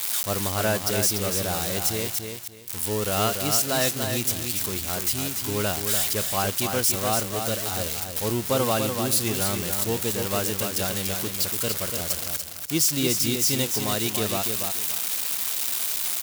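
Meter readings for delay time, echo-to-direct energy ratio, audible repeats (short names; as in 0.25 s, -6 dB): 0.29 s, -5.5 dB, 3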